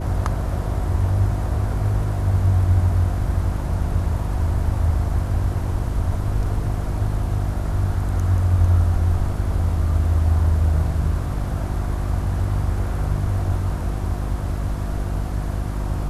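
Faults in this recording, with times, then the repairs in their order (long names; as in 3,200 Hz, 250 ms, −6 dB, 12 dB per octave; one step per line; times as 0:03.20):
mains hum 50 Hz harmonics 7 −25 dBFS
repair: hum removal 50 Hz, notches 7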